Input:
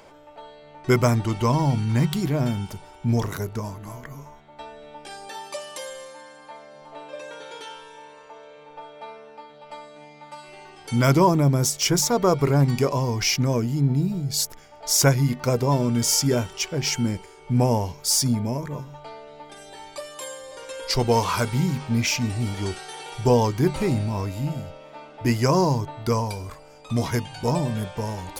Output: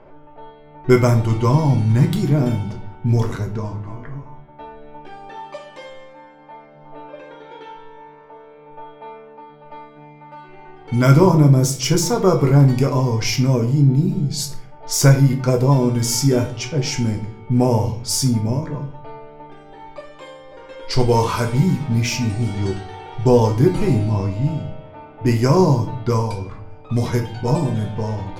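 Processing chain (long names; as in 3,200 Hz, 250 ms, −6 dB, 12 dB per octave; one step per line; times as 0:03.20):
low-pass that shuts in the quiet parts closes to 1,700 Hz, open at −19 dBFS
low-shelf EQ 470 Hz +7 dB
rectangular room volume 50 cubic metres, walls mixed, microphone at 0.45 metres
level −1.5 dB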